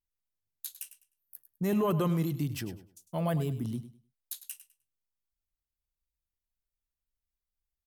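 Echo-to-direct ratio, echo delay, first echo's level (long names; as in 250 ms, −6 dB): −13.5 dB, 102 ms, −13.5 dB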